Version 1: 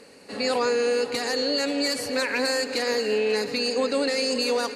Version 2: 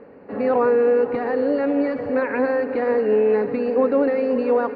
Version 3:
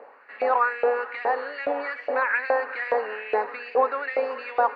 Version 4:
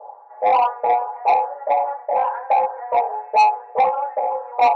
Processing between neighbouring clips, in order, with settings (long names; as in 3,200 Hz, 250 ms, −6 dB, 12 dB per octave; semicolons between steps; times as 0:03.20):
Bessel low-pass filter 1,100 Hz, order 4; level +7 dB
auto-filter high-pass saw up 2.4 Hz 660–2,600 Hz
flat-topped band-pass 740 Hz, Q 2.8; convolution reverb RT60 0.35 s, pre-delay 3 ms, DRR −9.5 dB; soft clipping −2 dBFS, distortion −11 dB; level −7.5 dB